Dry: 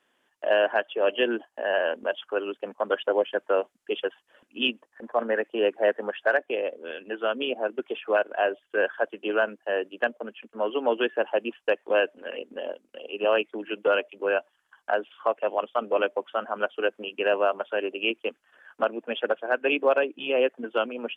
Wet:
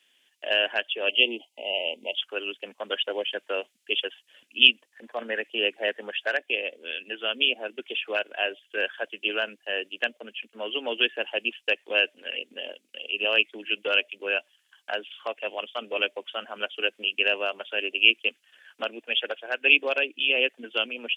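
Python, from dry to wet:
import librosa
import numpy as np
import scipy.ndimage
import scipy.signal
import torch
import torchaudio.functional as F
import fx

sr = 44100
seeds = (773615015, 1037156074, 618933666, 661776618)

y = fx.spec_erase(x, sr, start_s=1.09, length_s=1.09, low_hz=970.0, high_hz=2000.0)
y = fx.bass_treble(y, sr, bass_db=-11, treble_db=0, at=(19.0, 19.6))
y = scipy.signal.sosfilt(scipy.signal.butter(2, 130.0, 'highpass', fs=sr, output='sos'), y)
y = fx.high_shelf_res(y, sr, hz=1800.0, db=14.0, q=1.5)
y = y * 10.0 ** (-6.0 / 20.0)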